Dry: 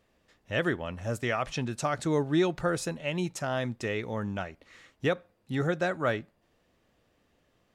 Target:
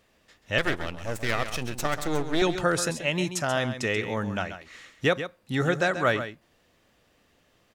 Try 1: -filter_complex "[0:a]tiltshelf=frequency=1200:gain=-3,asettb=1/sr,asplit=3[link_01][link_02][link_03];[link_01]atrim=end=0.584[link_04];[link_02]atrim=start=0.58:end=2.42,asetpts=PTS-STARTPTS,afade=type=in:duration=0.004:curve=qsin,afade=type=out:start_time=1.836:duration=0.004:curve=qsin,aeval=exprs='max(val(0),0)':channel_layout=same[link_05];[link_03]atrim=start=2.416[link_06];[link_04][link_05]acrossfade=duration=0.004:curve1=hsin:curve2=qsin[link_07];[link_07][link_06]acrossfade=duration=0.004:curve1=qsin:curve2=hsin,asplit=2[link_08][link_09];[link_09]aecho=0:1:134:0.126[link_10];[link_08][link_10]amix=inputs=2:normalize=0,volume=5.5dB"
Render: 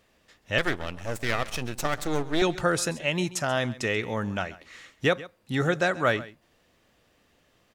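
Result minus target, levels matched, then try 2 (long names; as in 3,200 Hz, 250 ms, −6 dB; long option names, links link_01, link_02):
echo-to-direct −7.5 dB
-filter_complex "[0:a]tiltshelf=frequency=1200:gain=-3,asettb=1/sr,asplit=3[link_01][link_02][link_03];[link_01]atrim=end=0.584[link_04];[link_02]atrim=start=0.58:end=2.42,asetpts=PTS-STARTPTS,afade=type=in:duration=0.004:curve=qsin,afade=type=out:start_time=1.836:duration=0.004:curve=qsin,aeval=exprs='max(val(0),0)':channel_layout=same[link_05];[link_03]atrim=start=2.416[link_06];[link_04][link_05]acrossfade=duration=0.004:curve1=hsin:curve2=qsin[link_07];[link_07][link_06]acrossfade=duration=0.004:curve1=qsin:curve2=hsin,asplit=2[link_08][link_09];[link_09]aecho=0:1:134:0.299[link_10];[link_08][link_10]amix=inputs=2:normalize=0,volume=5.5dB"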